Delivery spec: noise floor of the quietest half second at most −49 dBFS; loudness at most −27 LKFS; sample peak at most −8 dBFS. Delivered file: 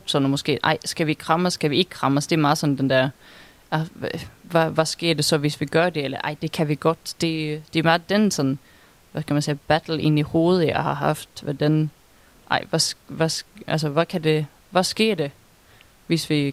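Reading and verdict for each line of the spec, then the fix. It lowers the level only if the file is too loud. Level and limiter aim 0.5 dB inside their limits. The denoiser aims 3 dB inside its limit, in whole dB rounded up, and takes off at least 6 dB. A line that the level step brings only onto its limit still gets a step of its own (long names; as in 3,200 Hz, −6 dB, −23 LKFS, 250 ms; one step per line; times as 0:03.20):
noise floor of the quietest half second −53 dBFS: in spec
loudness −22.0 LKFS: out of spec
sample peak −4.0 dBFS: out of spec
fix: level −5.5 dB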